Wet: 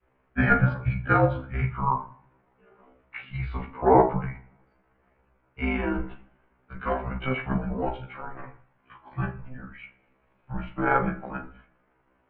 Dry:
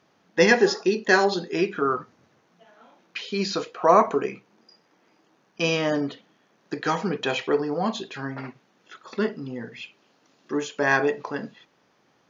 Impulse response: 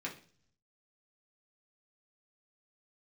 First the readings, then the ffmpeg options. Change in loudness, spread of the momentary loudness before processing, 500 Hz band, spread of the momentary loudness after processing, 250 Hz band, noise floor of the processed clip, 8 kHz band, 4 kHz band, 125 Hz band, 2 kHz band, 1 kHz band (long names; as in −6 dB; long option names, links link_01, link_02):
−2.5 dB, 17 LU, −5.5 dB, 20 LU, −2.0 dB, −68 dBFS, can't be measured, −17.5 dB, +8.0 dB, −5.0 dB, −1.0 dB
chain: -filter_complex "[0:a]bandreject=frequency=100.7:width_type=h:width=4,bandreject=frequency=201.4:width_type=h:width=4,bandreject=frequency=302.1:width_type=h:width=4,bandreject=frequency=402.8:width_type=h:width=4,bandreject=frequency=503.5:width_type=h:width=4,adynamicequalizer=threshold=0.0251:dfrequency=1000:dqfactor=1.1:tfrequency=1000:tqfactor=1.1:attack=5:release=100:ratio=0.375:range=2:mode=boostabove:tftype=bell,tremolo=f=25:d=1,asplit=2[link_01][link_02];[1:a]atrim=start_sample=2205,asetrate=30429,aresample=44100,adelay=27[link_03];[link_02][link_03]afir=irnorm=-1:irlink=0,volume=-12.5dB[link_04];[link_01][link_04]amix=inputs=2:normalize=0,highpass=frequency=230:width_type=q:width=0.5412,highpass=frequency=230:width_type=q:width=1.307,lowpass=frequency=2700:width_type=q:width=0.5176,lowpass=frequency=2700:width_type=q:width=0.7071,lowpass=frequency=2700:width_type=q:width=1.932,afreqshift=-260,afftfilt=real='re*1.73*eq(mod(b,3),0)':imag='im*1.73*eq(mod(b,3),0)':win_size=2048:overlap=0.75,volume=3dB"